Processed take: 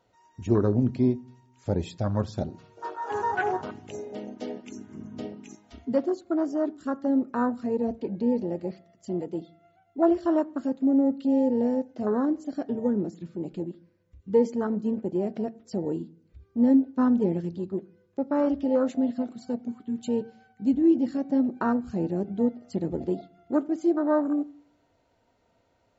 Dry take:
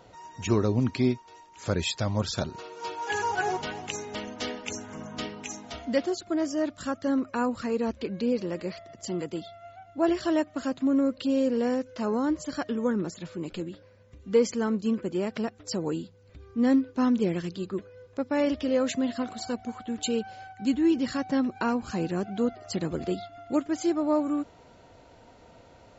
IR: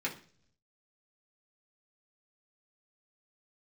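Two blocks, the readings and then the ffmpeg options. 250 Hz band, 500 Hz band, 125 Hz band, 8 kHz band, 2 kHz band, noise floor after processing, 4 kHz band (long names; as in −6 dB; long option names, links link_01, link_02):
+2.0 dB, +1.0 dB, +1.0 dB, can't be measured, −4.0 dB, −68 dBFS, below −10 dB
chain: -filter_complex "[0:a]afwtdn=0.0355,asplit=2[link_01][link_02];[1:a]atrim=start_sample=2205,asetrate=36162,aresample=44100[link_03];[link_02][link_03]afir=irnorm=-1:irlink=0,volume=-17.5dB[link_04];[link_01][link_04]amix=inputs=2:normalize=0,volume=1dB"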